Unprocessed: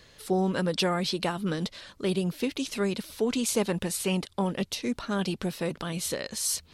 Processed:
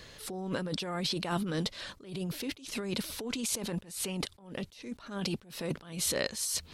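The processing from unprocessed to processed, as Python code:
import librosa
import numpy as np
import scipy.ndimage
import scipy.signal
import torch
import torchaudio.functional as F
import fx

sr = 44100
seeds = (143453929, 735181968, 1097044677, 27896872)

y = fx.over_compress(x, sr, threshold_db=-33.0, ratio=-1.0)
y = fx.attack_slew(y, sr, db_per_s=110.0)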